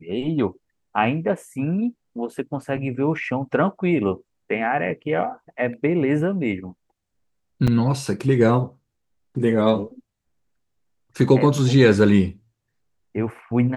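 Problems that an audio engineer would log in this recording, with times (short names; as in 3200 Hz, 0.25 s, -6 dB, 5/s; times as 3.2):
7.67–7.68 gap 6.5 ms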